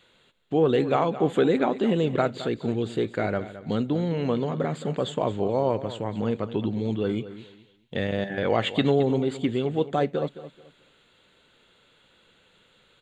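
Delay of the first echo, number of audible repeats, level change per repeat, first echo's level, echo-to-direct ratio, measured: 216 ms, 2, -11.5 dB, -14.0 dB, -13.5 dB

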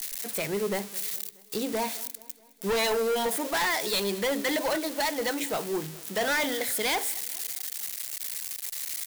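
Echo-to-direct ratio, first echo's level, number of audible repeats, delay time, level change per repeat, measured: -20.5 dB, -22.0 dB, 3, 212 ms, -5.0 dB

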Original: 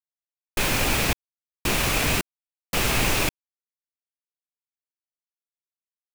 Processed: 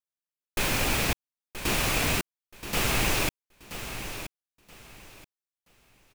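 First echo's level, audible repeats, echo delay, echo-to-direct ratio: -11.0 dB, 2, 977 ms, -11.0 dB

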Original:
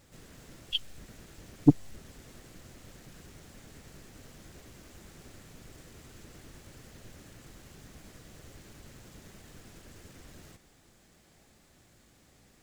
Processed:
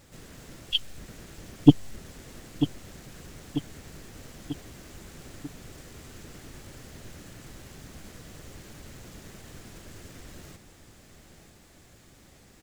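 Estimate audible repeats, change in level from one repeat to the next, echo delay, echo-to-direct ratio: 4, -5.0 dB, 942 ms, -9.5 dB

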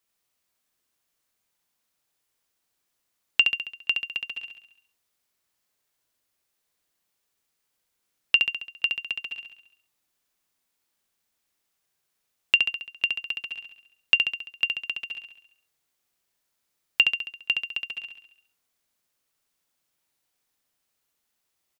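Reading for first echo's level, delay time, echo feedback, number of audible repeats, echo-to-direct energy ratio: -5.0 dB, 68 ms, 55%, 6, -3.5 dB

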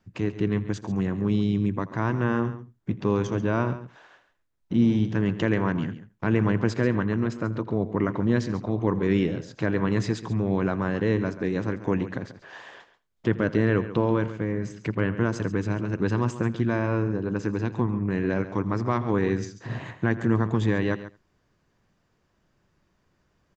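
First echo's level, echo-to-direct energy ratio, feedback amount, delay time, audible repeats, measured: -19.0 dB, -12.5 dB, no regular repeats, 82 ms, 3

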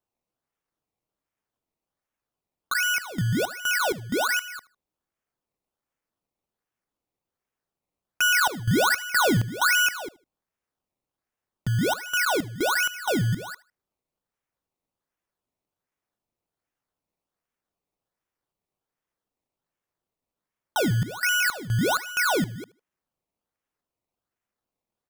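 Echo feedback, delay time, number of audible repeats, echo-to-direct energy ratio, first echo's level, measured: 27%, 77 ms, 2, -20.5 dB, -21.0 dB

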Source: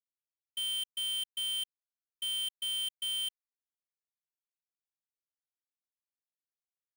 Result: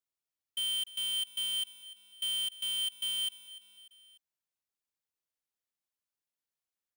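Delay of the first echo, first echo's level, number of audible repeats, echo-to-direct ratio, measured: 296 ms, -17.0 dB, 3, -15.5 dB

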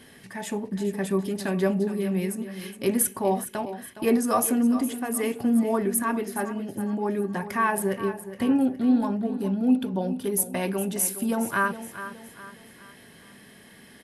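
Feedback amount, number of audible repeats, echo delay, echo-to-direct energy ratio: 41%, 3, 415 ms, -11.5 dB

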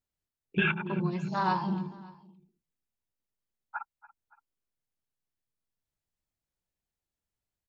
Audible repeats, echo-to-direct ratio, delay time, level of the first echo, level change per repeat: 2, -18.0 dB, 284 ms, -19.0 dB, -6.0 dB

